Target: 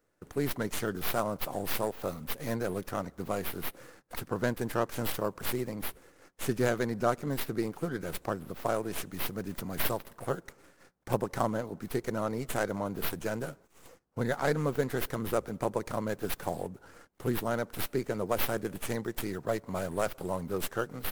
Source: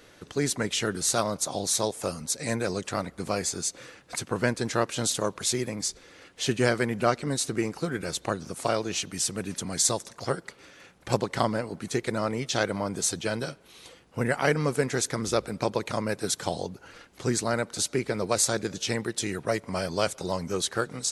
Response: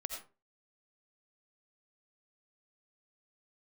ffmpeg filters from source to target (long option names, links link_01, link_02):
-filter_complex "[0:a]agate=range=-17dB:threshold=-50dB:ratio=16:detection=peak,acrossover=split=2000[link_01][link_02];[link_02]aeval=exprs='abs(val(0))':channel_layout=same[link_03];[link_01][link_03]amix=inputs=2:normalize=0,volume=-3.5dB"